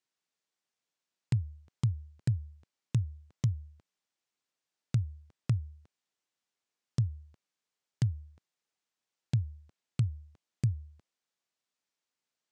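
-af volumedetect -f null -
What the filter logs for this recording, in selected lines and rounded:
mean_volume: -36.5 dB
max_volume: -18.5 dB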